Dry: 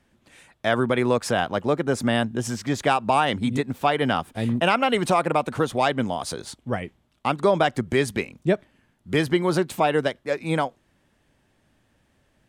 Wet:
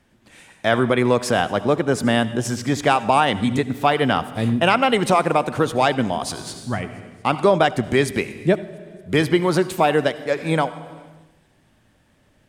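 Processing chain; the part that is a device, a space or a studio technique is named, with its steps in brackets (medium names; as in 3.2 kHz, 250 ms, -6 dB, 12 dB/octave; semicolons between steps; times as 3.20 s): 6.24–6.77 s: peaking EQ 480 Hz -14 dB 0.46 oct; compressed reverb return (on a send at -4 dB: reverberation RT60 0.95 s, pre-delay 65 ms + compression 5:1, threshold -31 dBFS, peak gain reduction 16.5 dB); on the sum: feedback echo behind a high-pass 229 ms, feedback 69%, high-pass 5.5 kHz, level -24 dB; trim +3.5 dB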